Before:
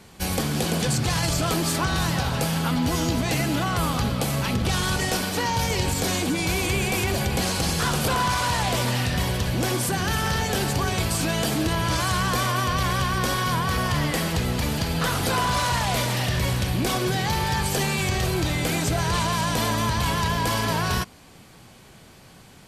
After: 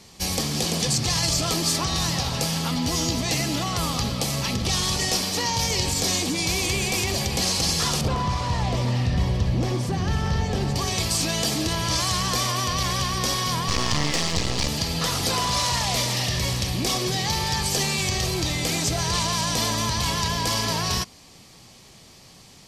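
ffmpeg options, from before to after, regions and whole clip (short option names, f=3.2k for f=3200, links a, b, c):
-filter_complex "[0:a]asettb=1/sr,asplit=3[a][b][c];[a]atrim=end=8.014[d];[b]atrim=start=8.01:end=10.76,asetpts=PTS-STARTPTS,afade=t=in:d=0.004:c=qsin,afade=t=out:st=2.746:d=0.004:c=qsin,lowpass=f=1.3k:p=1,lowshelf=f=170:g=8.5[e];[c]atrim=start=10.756[f];[d][e]acrossfade=d=0.004:c1=hsin:c2=qsin[g];[g][f]acrossfade=d=0.004:c1=qsin:c2=hsin,asettb=1/sr,asplit=3[h][i][j];[h]atrim=end=13.684[k];[i]atrim=start=13.68:end=14.68,asetpts=PTS-STARTPTS,afade=t=in:d=0.004:c=qsin,afade=t=out:st=0.996:d=0.004:c=qsin,lowpass=f=8.5k:w=0.5412,lowpass=f=8.5k:w=1.3066,acontrast=37,aeval=exprs='max(val(0),0)':c=same[l];[j]atrim=start=14.676[m];[k][l]acrossfade=d=0.004:c1=hsin:c2=qsin[n];[n][m]acrossfade=d=0.004:c1=qsin:c2=hsin,equalizer=f=5.4k:w=1.1:g=10.5,bandreject=f=1.5k:w=7,volume=-2.5dB"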